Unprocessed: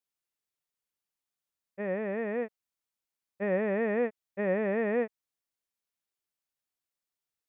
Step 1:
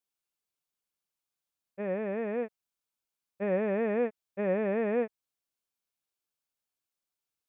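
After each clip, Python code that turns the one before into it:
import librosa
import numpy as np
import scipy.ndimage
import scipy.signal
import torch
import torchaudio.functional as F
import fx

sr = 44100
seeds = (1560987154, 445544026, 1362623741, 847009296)

y = fx.notch(x, sr, hz=1900.0, q=8.6)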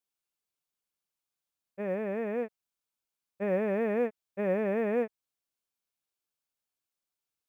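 y = fx.quant_float(x, sr, bits=6)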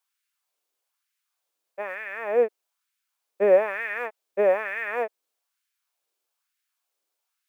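y = fx.filter_lfo_highpass(x, sr, shape='sine', hz=1.1, low_hz=390.0, high_hz=1800.0, q=2.0)
y = y * librosa.db_to_amplitude(7.5)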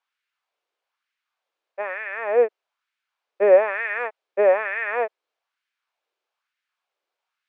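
y = fx.bandpass_edges(x, sr, low_hz=380.0, high_hz=3000.0)
y = y * librosa.db_to_amplitude(4.5)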